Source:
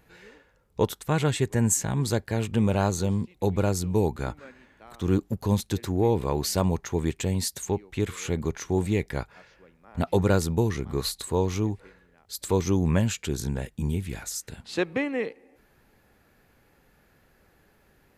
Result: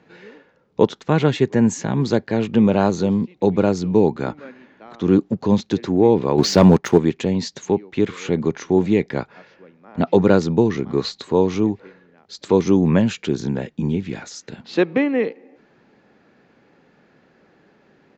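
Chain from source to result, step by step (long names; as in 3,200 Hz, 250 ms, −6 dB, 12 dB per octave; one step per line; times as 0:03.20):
downsampling to 16,000 Hz
three-way crossover with the lows and the highs turned down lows −21 dB, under 150 Hz, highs −21 dB, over 5,900 Hz
0:06.38–0:06.98: leveller curve on the samples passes 2
parametric band 200 Hz +7 dB 3 octaves
level +4.5 dB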